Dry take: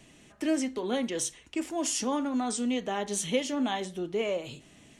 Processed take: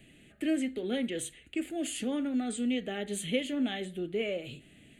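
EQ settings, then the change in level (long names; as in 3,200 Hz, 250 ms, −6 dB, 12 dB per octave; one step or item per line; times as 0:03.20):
phaser with its sweep stopped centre 2,400 Hz, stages 4
0.0 dB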